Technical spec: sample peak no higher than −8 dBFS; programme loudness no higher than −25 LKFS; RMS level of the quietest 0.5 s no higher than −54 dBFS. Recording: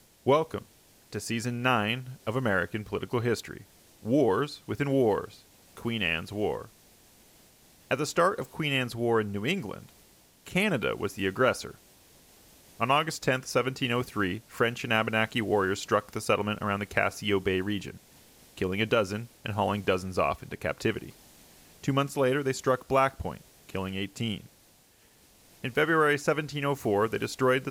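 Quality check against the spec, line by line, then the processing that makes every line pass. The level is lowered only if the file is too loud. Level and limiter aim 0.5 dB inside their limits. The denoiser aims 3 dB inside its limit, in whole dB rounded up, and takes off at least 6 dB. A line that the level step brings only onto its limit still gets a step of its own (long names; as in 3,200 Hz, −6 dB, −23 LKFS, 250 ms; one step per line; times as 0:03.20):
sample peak −10.5 dBFS: in spec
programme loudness −28.5 LKFS: in spec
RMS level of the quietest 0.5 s −60 dBFS: in spec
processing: no processing needed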